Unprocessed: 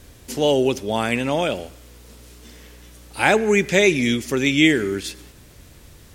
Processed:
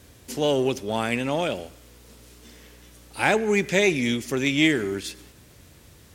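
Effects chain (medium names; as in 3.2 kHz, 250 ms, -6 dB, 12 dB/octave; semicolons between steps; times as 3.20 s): in parallel at -3 dB: one-sided clip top -24 dBFS; on the sum: high-pass 61 Hz; trim -8 dB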